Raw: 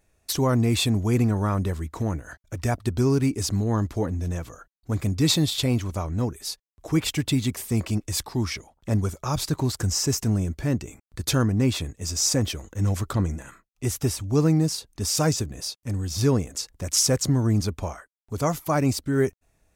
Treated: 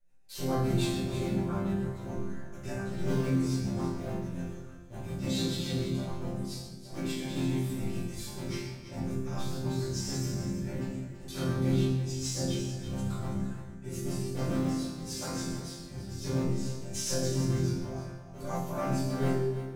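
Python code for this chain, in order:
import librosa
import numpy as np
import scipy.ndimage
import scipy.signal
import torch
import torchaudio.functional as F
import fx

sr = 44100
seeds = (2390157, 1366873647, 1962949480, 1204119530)

p1 = fx.cycle_switch(x, sr, every=3, mode='muted')
p2 = fx.room_shoebox(p1, sr, seeds[0], volume_m3=280.0, walls='mixed', distance_m=4.9)
p3 = fx.rotary(p2, sr, hz=7.0)
p4 = fx.resonator_bank(p3, sr, root=48, chord='sus4', decay_s=0.69)
y = p4 + fx.echo_single(p4, sr, ms=333, db=-11.0, dry=0)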